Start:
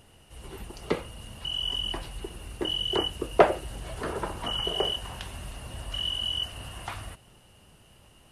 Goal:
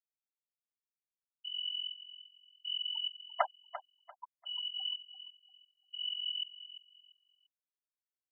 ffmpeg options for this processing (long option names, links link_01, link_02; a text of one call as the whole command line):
ffmpeg -i in.wav -af "highpass=frequency=830:width=0.5412,highpass=frequency=830:width=1.3066,afftfilt=real='re*gte(hypot(re,im),0.178)':imag='im*gte(hypot(re,im),0.178)':win_size=1024:overlap=0.75,aecho=1:1:344|688|1032:0.224|0.0582|0.0151,volume=-5.5dB" out.wav